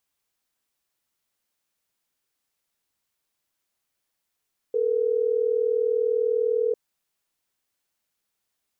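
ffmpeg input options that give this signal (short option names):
-f lavfi -i "aevalsrc='0.0708*(sin(2*PI*440*t)+sin(2*PI*480*t))*clip(min(mod(t,6),2-mod(t,6))/0.005,0,1)':d=3.12:s=44100"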